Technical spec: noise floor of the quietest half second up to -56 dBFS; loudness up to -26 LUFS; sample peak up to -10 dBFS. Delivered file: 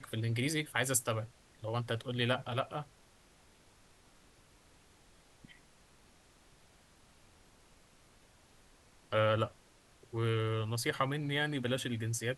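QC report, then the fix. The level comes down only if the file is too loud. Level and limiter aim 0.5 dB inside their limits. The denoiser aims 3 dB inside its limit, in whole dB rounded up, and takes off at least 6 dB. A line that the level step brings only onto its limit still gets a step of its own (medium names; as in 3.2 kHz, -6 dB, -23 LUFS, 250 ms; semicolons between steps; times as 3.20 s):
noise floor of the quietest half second -63 dBFS: pass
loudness -34.5 LUFS: pass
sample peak -15.5 dBFS: pass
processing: none needed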